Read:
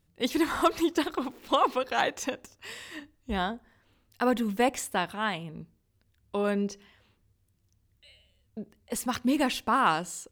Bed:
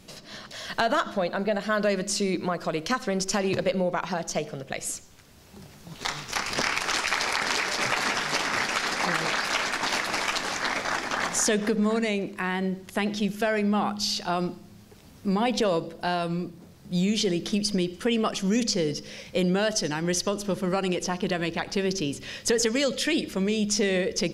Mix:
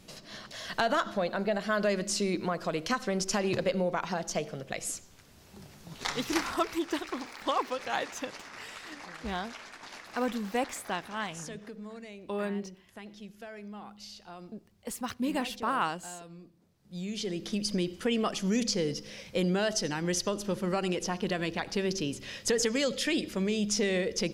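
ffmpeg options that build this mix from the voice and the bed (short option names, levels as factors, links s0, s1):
-filter_complex "[0:a]adelay=5950,volume=0.531[s0];[1:a]volume=3.98,afade=t=out:st=6.36:d=0.21:silence=0.158489,afade=t=in:st=16.78:d=1.05:silence=0.16788[s1];[s0][s1]amix=inputs=2:normalize=0"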